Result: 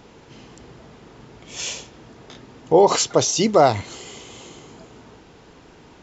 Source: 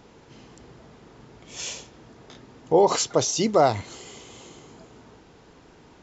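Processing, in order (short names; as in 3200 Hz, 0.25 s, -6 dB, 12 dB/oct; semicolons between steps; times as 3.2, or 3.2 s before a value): bell 2800 Hz +2 dB; gain +4 dB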